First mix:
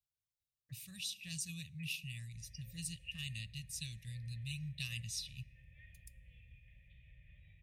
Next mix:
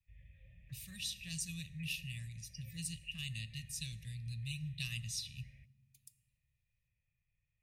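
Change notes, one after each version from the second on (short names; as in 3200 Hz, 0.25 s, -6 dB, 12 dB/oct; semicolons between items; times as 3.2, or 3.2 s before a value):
speech: send +8.5 dB; background: entry -2.25 s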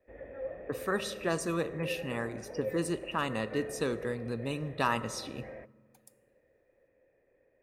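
master: remove inverse Chebyshev band-stop 260–1500 Hz, stop band 40 dB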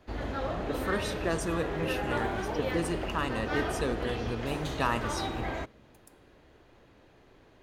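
background: remove vocal tract filter e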